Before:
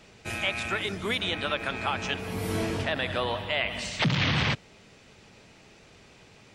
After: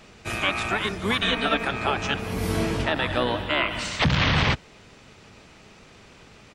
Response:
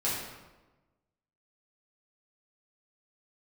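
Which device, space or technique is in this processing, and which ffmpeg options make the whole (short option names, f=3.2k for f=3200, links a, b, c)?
octave pedal: -filter_complex "[0:a]asplit=2[a][b];[b]asetrate=22050,aresample=44100,atempo=2,volume=-4dB[c];[a][c]amix=inputs=2:normalize=0,asettb=1/sr,asplit=3[d][e][f];[d]atrim=end=1.224[g];[e]atrim=start=1.22:end=1.65,asetpts=PTS-STARTPTS,afade=t=in:d=0.004:c=qsin,afade=t=out:st=0.426:d=0.004:c=qsin,aecho=1:1:4.4:0.82,atrim=end_sample=18963[h];[f]atrim=start=1.646[i];[g][h]acrossfade=d=0.004:c1=hsin:c2=qsin[j];[j][i]acrossfade=d=0.004:c1=qsin:c2=hsin,volume=3dB"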